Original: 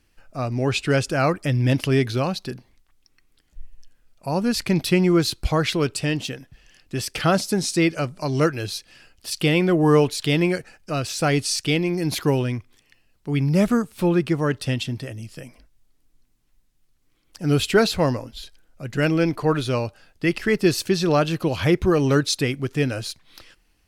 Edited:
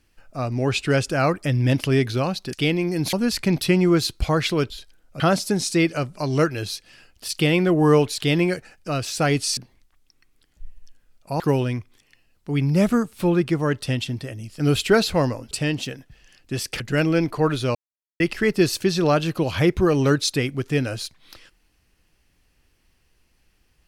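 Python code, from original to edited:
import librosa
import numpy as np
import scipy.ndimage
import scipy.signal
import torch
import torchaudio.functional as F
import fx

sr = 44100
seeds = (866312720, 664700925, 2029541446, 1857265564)

y = fx.edit(x, sr, fx.swap(start_s=2.53, length_s=1.83, other_s=11.59, other_length_s=0.6),
    fx.swap(start_s=5.93, length_s=1.29, other_s=18.35, other_length_s=0.5),
    fx.cut(start_s=15.39, length_s=2.05),
    fx.silence(start_s=19.8, length_s=0.45), tone=tone)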